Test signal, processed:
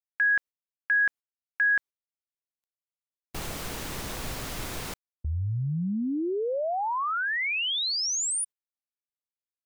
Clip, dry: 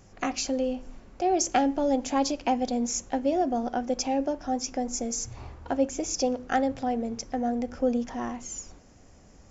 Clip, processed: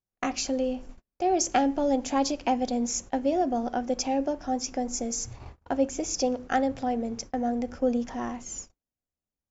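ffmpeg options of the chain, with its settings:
ffmpeg -i in.wav -af "agate=range=-41dB:threshold=-40dB:ratio=16:detection=peak" out.wav

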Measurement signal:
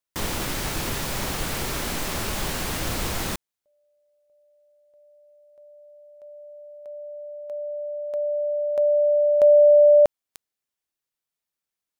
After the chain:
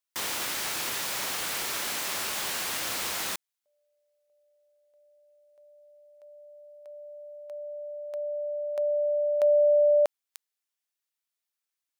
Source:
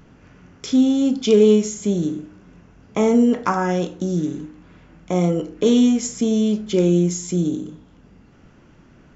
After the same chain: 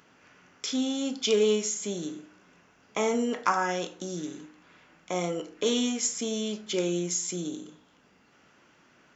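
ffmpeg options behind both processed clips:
ffmpeg -i in.wav -af "highpass=frequency=1200:poles=1" out.wav

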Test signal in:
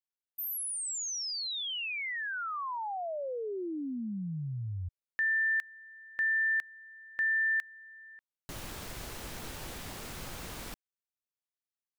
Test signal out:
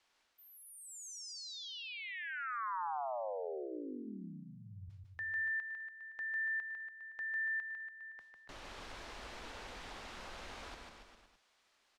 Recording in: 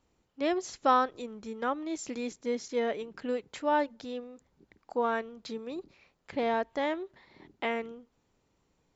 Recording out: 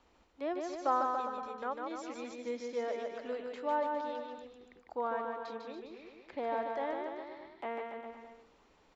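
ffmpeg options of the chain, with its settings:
ffmpeg -i in.wav -filter_complex "[0:a]lowpass=4600,equalizer=frequency=130:width=2.5:gain=-14.5,areverse,acompressor=mode=upward:threshold=-49dB:ratio=2.5:attack=16:release=122:knee=2.83:detection=peak,areverse,acrossover=split=450|1200[link_01][link_02][link_03];[link_01]flanger=delay=0.8:depth=6.6:regen=-72:speed=0.4:shape=sinusoidal[link_04];[link_02]crystalizer=i=6.5:c=0[link_05];[link_03]acompressor=threshold=-42dB:ratio=6:attack=0.24:release=91:knee=1:detection=peak[link_06];[link_04][link_05][link_06]amix=inputs=3:normalize=0,aecho=1:1:150|285|406.5|515.8|614.3:0.631|0.398|0.251|0.158|0.1,volume=-5.5dB" out.wav

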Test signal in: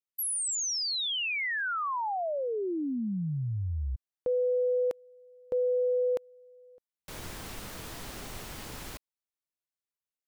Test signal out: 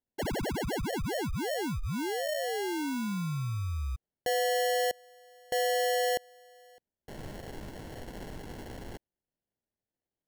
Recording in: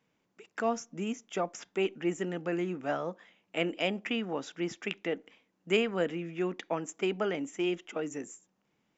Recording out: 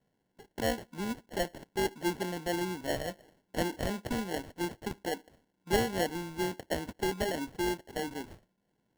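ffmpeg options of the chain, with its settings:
ffmpeg -i in.wav -af "acrusher=samples=36:mix=1:aa=0.000001,volume=-1dB" out.wav

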